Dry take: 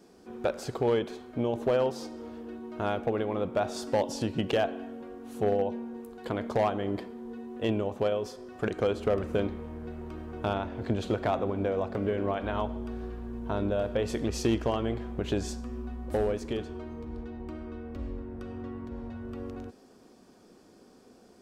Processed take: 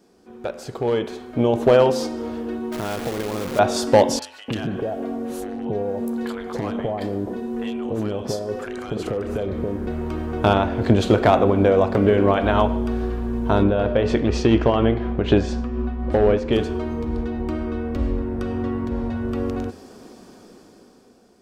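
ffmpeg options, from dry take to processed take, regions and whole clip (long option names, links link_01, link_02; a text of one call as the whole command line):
ffmpeg -i in.wav -filter_complex "[0:a]asettb=1/sr,asplit=3[link_01][link_02][link_03];[link_01]atrim=end=2.724[link_04];[link_02]atrim=start=2.72:end=3.59,asetpts=PTS-STARTPTS,afade=type=in:duration=0.004:curve=qsin,afade=type=out:start_time=0.866:duration=0.004:curve=qsin,acompressor=threshold=-37dB:ratio=4:attack=3.2:release=140:knee=1:detection=peak,acrusher=bits=8:dc=4:mix=0:aa=0.000001[link_05];[link_03]atrim=start=3.586[link_06];[link_04][link_05]acrossfade=duration=0.004:curve1=hsin:curve2=qsin[link_07];[link_07][link_06]acrossfade=duration=0.004:curve1=qsin:curve2=hsin,asettb=1/sr,asplit=3[link_08][link_09][link_10];[link_08]atrim=end=4.194[link_11];[link_09]atrim=start=4.19:end=9.87,asetpts=PTS-STARTPTS,afade=type=in:duration=0.004:curve=qsin,afade=type=out:start_time=5.676:duration=0.004:curve=qsin,acompressor=threshold=-35dB:ratio=5:attack=3.2:release=140:knee=1:detection=peak,acrossover=split=890|2800[link_12][link_13][link_14];[link_14]adelay=30[link_15];[link_12]adelay=290[link_16];[link_16][link_13][link_15]amix=inputs=3:normalize=0,atrim=end_sample=250488[link_17];[link_10]atrim=start=9.866[link_18];[link_11][link_17]acrossfade=duration=0.004:curve1=hsin:curve2=qsin[link_19];[link_19][link_18]acrossfade=duration=0.004:curve1=qsin:curve2=hsin,asettb=1/sr,asplit=3[link_20][link_21][link_22];[link_20]atrim=end=13.634[link_23];[link_21]atrim=start=13.63:end=16.53,asetpts=PTS-STARTPTS,afade=type=in:duration=0.004:curve=qsin,afade=type=out:start_time=2.896:duration=0.004:curve=qsin,lowpass=3400,tremolo=f=4.1:d=0.36[link_24];[link_22]atrim=start=16.526[link_25];[link_23][link_24]acrossfade=duration=0.004:curve1=hsin:curve2=qsin[link_26];[link_26][link_25]acrossfade=duration=0.004:curve1=qsin:curve2=hsin,bandreject=frequency=86.27:width_type=h:width=4,bandreject=frequency=172.54:width_type=h:width=4,bandreject=frequency=258.81:width_type=h:width=4,bandreject=frequency=345.08:width_type=h:width=4,bandreject=frequency=431.35:width_type=h:width=4,bandreject=frequency=517.62:width_type=h:width=4,bandreject=frequency=603.89:width_type=h:width=4,bandreject=frequency=690.16:width_type=h:width=4,bandreject=frequency=776.43:width_type=h:width=4,bandreject=frequency=862.7:width_type=h:width=4,bandreject=frequency=948.97:width_type=h:width=4,bandreject=frequency=1035.24:width_type=h:width=4,bandreject=frequency=1121.51:width_type=h:width=4,bandreject=frequency=1207.78:width_type=h:width=4,bandreject=frequency=1294.05:width_type=h:width=4,bandreject=frequency=1380.32:width_type=h:width=4,bandreject=frequency=1466.59:width_type=h:width=4,bandreject=frequency=1552.86:width_type=h:width=4,bandreject=frequency=1639.13:width_type=h:width=4,bandreject=frequency=1725.4:width_type=h:width=4,bandreject=frequency=1811.67:width_type=h:width=4,bandreject=frequency=1897.94:width_type=h:width=4,bandreject=frequency=1984.21:width_type=h:width=4,bandreject=frequency=2070.48:width_type=h:width=4,bandreject=frequency=2156.75:width_type=h:width=4,bandreject=frequency=2243.02:width_type=h:width=4,bandreject=frequency=2329.29:width_type=h:width=4,bandreject=frequency=2415.56:width_type=h:width=4,bandreject=frequency=2501.83:width_type=h:width=4,bandreject=frequency=2588.1:width_type=h:width=4,bandreject=frequency=2674.37:width_type=h:width=4,bandreject=frequency=2760.64:width_type=h:width=4,bandreject=frequency=2846.91:width_type=h:width=4,bandreject=frequency=2933.18:width_type=h:width=4,bandreject=frequency=3019.45:width_type=h:width=4,dynaudnorm=framelen=230:gausssize=11:maxgain=14dB" out.wav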